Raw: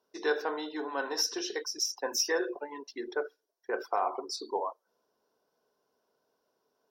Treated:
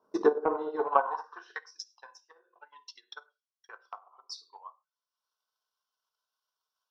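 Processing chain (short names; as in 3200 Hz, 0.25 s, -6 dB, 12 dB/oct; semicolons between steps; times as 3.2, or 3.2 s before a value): treble ducked by the level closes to 490 Hz, closed at -25 dBFS; resonant high shelf 1600 Hz -9.5 dB, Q 3; non-linear reverb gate 0.14 s falling, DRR 4 dB; in parallel at +2 dB: compressor, threshold -43 dBFS, peak gain reduction 19 dB; on the sum: high-pass sweep 130 Hz -> 3100 Hz, 0.02–1.89; transient shaper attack +11 dB, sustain -5 dB; gain -5 dB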